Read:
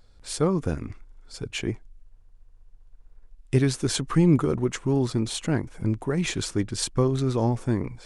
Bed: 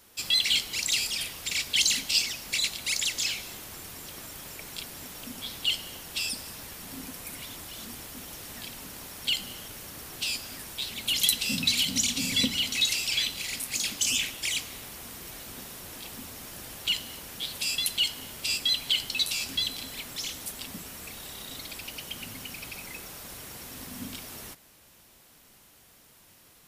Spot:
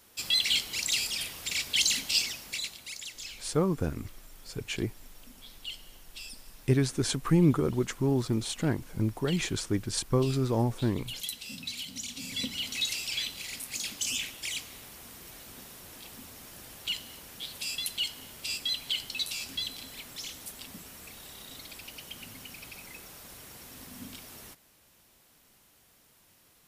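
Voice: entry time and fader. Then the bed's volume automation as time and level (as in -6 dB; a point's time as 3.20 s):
3.15 s, -3.5 dB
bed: 2.26 s -2 dB
2.94 s -13 dB
11.98 s -13 dB
12.71 s -5.5 dB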